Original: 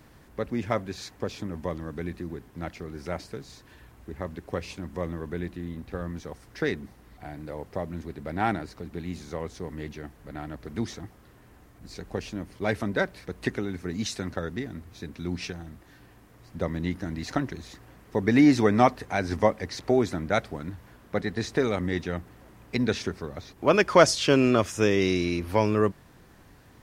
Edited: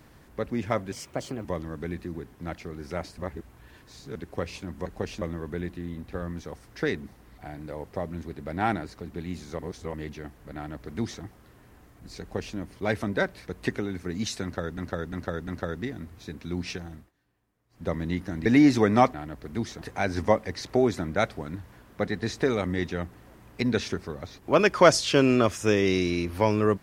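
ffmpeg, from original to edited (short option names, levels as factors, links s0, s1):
-filter_complex "[0:a]asplit=17[s0][s1][s2][s3][s4][s5][s6][s7][s8][s9][s10][s11][s12][s13][s14][s15][s16];[s0]atrim=end=0.924[s17];[s1]atrim=start=0.92:end=1.6,asetpts=PTS-STARTPTS,asetrate=56889,aresample=44100[s18];[s2]atrim=start=1.596:end=3.332[s19];[s3]atrim=start=3.328:end=4.312,asetpts=PTS-STARTPTS,areverse[s20];[s4]atrim=start=4.308:end=5.012[s21];[s5]atrim=start=11.998:end=12.362[s22];[s6]atrim=start=5.008:end=9.382[s23];[s7]atrim=start=9.378:end=9.732,asetpts=PTS-STARTPTS,areverse[s24];[s8]atrim=start=9.728:end=14.572[s25];[s9]atrim=start=14.218:end=14.572[s26];[s10]atrim=start=14.218:end=14.572[s27];[s11]atrim=start=14.218:end=15.86,asetpts=PTS-STARTPTS,afade=t=out:st=1.462:d=0.18:silence=0.0841395[s28];[s12]atrim=start=15.86:end=16.44,asetpts=PTS-STARTPTS,volume=0.0841[s29];[s13]atrim=start=16.44:end=17.202,asetpts=PTS-STARTPTS,afade=t=in:d=0.18:silence=0.0841395[s30];[s14]atrim=start=18.278:end=18.962[s31];[s15]atrim=start=10.348:end=11.032[s32];[s16]atrim=start=18.958[s33];[s17][s18]acrossfade=d=0.004:c1=hsin:c2=hsin[s34];[s34][s19]acrossfade=d=0.004:c1=hsin:c2=hsin[s35];[s35][s20]acrossfade=d=0.004:c1=hsin:c2=hsin[s36];[s36][s21]acrossfade=d=0.004:c1=hsin:c2=hsin[s37];[s37][s22]acrossfade=d=0.004:c1=hsin:c2=hsin[s38];[s38][s23]acrossfade=d=0.004:c1=hsin:c2=hsin[s39];[s39][s24]acrossfade=d=0.004:c1=hsin:c2=hsin[s40];[s40][s25]acrossfade=d=0.004:c1=hsin:c2=hsin[s41];[s41][s26]acrossfade=d=0.004:c1=hsin:c2=hsin[s42];[s42][s27]acrossfade=d=0.004:c1=hsin:c2=hsin[s43];[s28][s29][s30]concat=n=3:v=0:a=1[s44];[s43][s44]acrossfade=d=0.004:c1=hsin:c2=hsin[s45];[s45][s31]acrossfade=d=0.004:c1=hsin:c2=hsin[s46];[s46][s32]acrossfade=d=0.004:c1=hsin:c2=hsin[s47];[s47][s33]acrossfade=d=0.004:c1=hsin:c2=hsin"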